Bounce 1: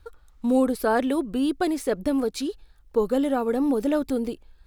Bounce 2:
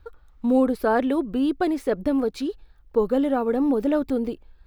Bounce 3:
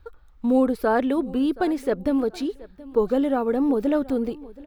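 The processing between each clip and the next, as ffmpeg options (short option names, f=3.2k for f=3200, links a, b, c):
-af "equalizer=f=9.1k:t=o:w=1.9:g=-12,volume=1.5dB"
-af "aecho=1:1:725|1450:0.1|0.027"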